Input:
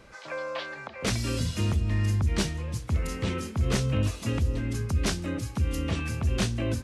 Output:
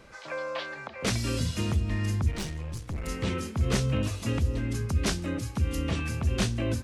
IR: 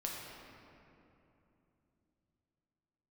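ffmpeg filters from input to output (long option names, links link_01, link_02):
-filter_complex "[0:a]bandreject=frequency=50:width_type=h:width=6,bandreject=frequency=100:width_type=h:width=6,asettb=1/sr,asplit=3[link_01][link_02][link_03];[link_01]atrim=end=2.314[link_04];[link_02]atrim=start=2.31:end=3.07,asetpts=PTS-STARTPTS,afade=type=in:duration=0.004:curve=qsin,afade=type=out:start_time=0.756:duration=0.004:curve=qsin,aeval=exprs='(tanh(31.6*val(0)+0.45)-tanh(0.45))/31.6':channel_layout=same[link_05];[link_03]atrim=start=3.066[link_06];[link_04][link_05]acrossfade=duration=0.004:curve1=hsin:curve2=qsin[link_07];[link_07][link_06]acrossfade=duration=0.004:curve1=qsin:curve2=hsin"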